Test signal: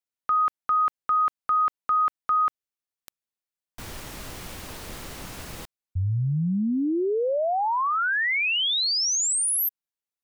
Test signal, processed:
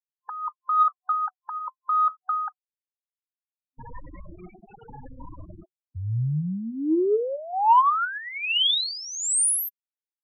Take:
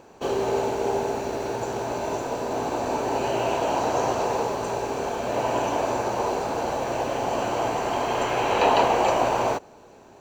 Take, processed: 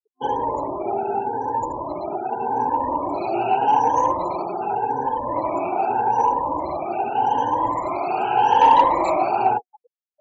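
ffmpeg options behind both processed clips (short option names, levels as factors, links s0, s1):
-af "afftfilt=real='re*pow(10,16/40*sin(2*PI*(1.1*log(max(b,1)*sr/1024/100)/log(2)-(0.84)*(pts-256)/sr)))':imag='im*pow(10,16/40*sin(2*PI*(1.1*log(max(b,1)*sr/1024/100)/log(2)-(0.84)*(pts-256)/sr)))':win_size=1024:overlap=0.75,flanger=delay=5.5:depth=7.9:regen=68:speed=0.23:shape=sinusoidal,afftfilt=real='re*gte(hypot(re,im),0.0316)':imag='im*gte(hypot(re,im),0.0316)':win_size=1024:overlap=0.75,superequalizer=6b=1.58:9b=3.16,asoftclip=type=tanh:threshold=0.596"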